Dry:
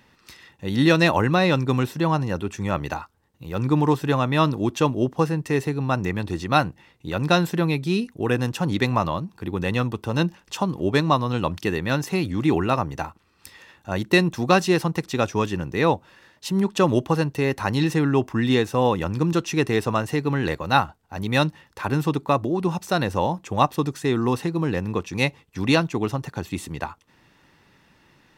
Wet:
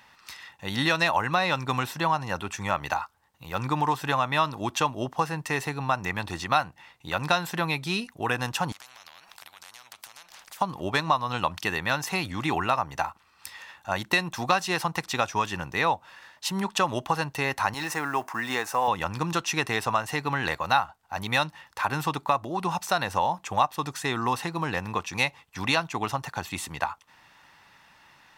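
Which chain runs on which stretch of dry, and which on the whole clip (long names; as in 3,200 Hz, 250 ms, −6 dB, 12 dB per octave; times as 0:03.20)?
0:08.72–0:10.61: bass and treble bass −8 dB, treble −8 dB + downward compressor, threshold −37 dBFS + every bin compressed towards the loudest bin 10 to 1
0:17.74–0:18.88: mu-law and A-law mismatch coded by mu + high-pass filter 510 Hz 6 dB per octave + parametric band 3,400 Hz −9.5 dB 0.87 octaves
whole clip: low shelf with overshoot 570 Hz −10 dB, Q 1.5; downward compressor 2.5 to 1, threshold −25 dBFS; level +3 dB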